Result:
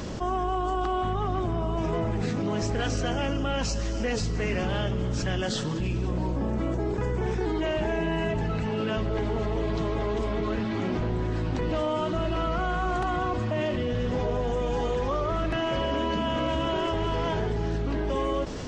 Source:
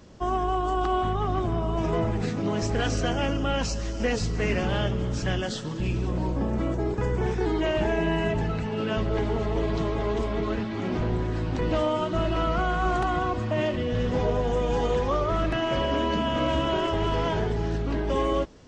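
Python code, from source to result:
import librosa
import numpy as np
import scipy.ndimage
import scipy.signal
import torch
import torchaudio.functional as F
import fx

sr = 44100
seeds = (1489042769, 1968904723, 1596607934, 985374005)

y = fx.env_flatten(x, sr, amount_pct=70)
y = F.gain(torch.from_numpy(y), -4.0).numpy()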